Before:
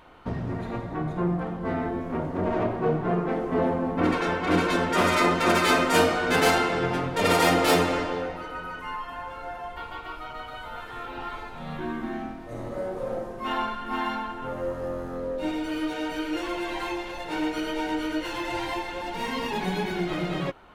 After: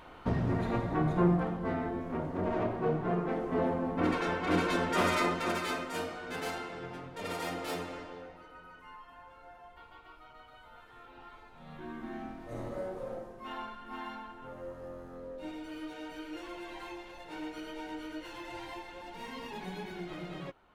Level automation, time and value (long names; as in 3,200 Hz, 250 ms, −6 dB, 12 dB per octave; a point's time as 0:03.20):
0:01.26 +0.5 dB
0:01.80 −6 dB
0:05.08 −6 dB
0:05.94 −16.5 dB
0:11.43 −16.5 dB
0:12.58 −4 dB
0:13.48 −13 dB